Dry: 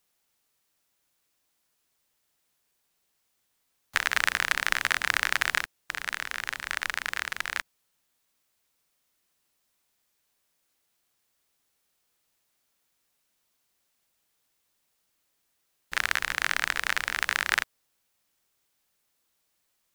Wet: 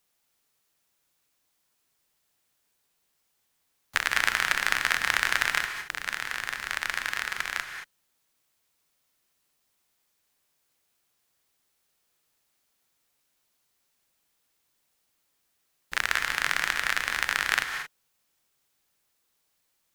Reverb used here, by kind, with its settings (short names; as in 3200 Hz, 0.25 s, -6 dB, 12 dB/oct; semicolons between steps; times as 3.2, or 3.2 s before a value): non-linear reverb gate 0.25 s rising, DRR 6.5 dB